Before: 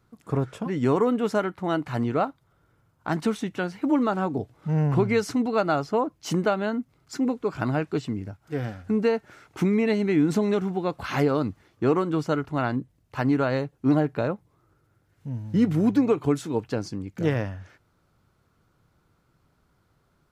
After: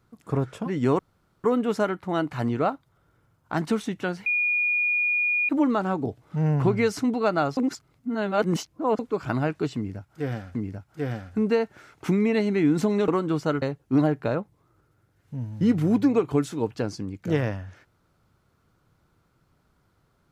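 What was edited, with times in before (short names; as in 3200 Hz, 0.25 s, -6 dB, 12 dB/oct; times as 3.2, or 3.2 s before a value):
0.99 insert room tone 0.45 s
3.81 add tone 2440 Hz -20.5 dBFS 1.23 s
5.89–7.31 reverse
8.08–8.87 loop, 2 plays
10.61–11.91 cut
12.45–13.55 cut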